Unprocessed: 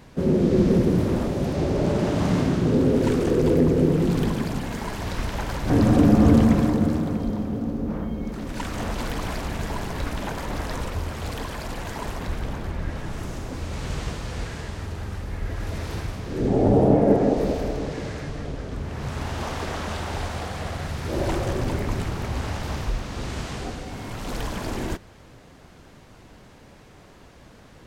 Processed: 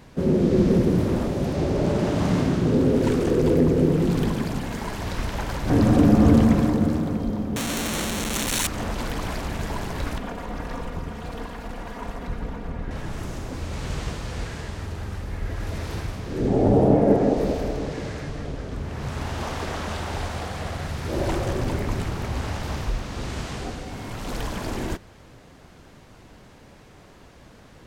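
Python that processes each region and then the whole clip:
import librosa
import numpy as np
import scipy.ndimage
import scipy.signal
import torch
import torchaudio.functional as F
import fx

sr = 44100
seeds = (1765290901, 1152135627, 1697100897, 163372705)

y = fx.chain(x, sr, fx.clip_1bit(),
    fx.peak_eq(hz=6800.0, db=12.5, octaves=2.9),
    fx.notch(hz=4900.0, q=6.1), at=(7.56, 8.67))
y = fx.chain(y, sr, fx.lower_of_two(delay_ms=4.2),
    fx.high_shelf(hz=2600.0, db=-11.0), at=(10.18, 12.91))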